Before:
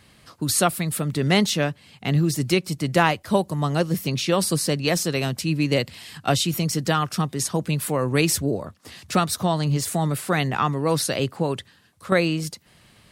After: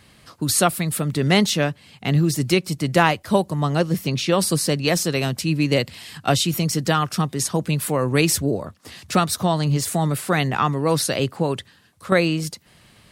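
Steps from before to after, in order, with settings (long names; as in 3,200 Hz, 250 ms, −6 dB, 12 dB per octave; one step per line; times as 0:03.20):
0:03.48–0:04.39: high-shelf EQ 7,900 Hz −5.5 dB
level +2 dB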